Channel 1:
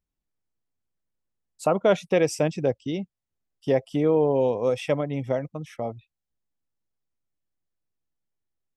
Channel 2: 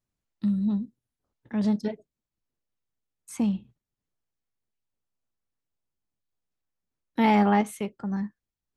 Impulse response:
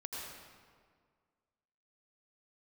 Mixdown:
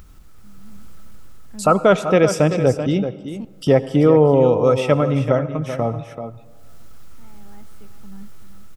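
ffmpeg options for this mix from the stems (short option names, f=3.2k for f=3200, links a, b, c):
-filter_complex "[0:a]equalizer=f=1.3k:t=o:w=0.21:g=13.5,acompressor=mode=upward:threshold=-30dB:ratio=2.5,volume=1.5dB,asplit=3[a][b][c];[b]volume=-12dB[d];[c]volume=-9.5dB[e];[1:a]alimiter=limit=-17.5dB:level=0:latency=1,aeval=exprs='val(0)*pow(10,-27*if(lt(mod(-0.58*n/s,1),2*abs(-0.58)/1000),1-mod(-0.58*n/s,1)/(2*abs(-0.58)/1000),(mod(-0.58*n/s,1)-2*abs(-0.58)/1000)/(1-2*abs(-0.58)/1000))/20)':c=same,volume=-13.5dB,asplit=2[f][g];[g]volume=-11.5dB[h];[2:a]atrim=start_sample=2205[i];[d][i]afir=irnorm=-1:irlink=0[j];[e][h]amix=inputs=2:normalize=0,aecho=0:1:385:1[k];[a][f][j][k]amix=inputs=4:normalize=0,lowshelf=f=160:g=9.5,dynaudnorm=f=150:g=7:m=6dB"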